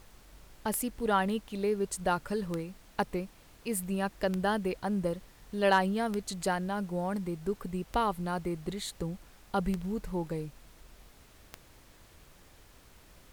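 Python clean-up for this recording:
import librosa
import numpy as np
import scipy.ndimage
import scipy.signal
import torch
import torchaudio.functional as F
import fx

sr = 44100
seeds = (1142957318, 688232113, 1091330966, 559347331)

y = fx.fix_declip(x, sr, threshold_db=-15.0)
y = fx.fix_declick_ar(y, sr, threshold=10.0)
y = fx.noise_reduce(y, sr, print_start_s=12.43, print_end_s=12.93, reduce_db=20.0)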